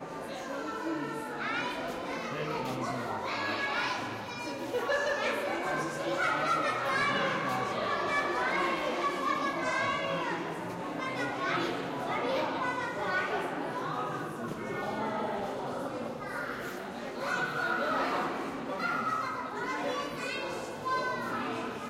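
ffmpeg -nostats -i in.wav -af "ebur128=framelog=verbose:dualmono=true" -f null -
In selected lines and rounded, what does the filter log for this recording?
Integrated loudness:
  I:         -29.4 LUFS
  Threshold: -39.4 LUFS
Loudness range:
  LRA:         5.0 LU
  Threshold: -49.2 LUFS
  LRA low:   -31.8 LUFS
  LRA high:  -26.7 LUFS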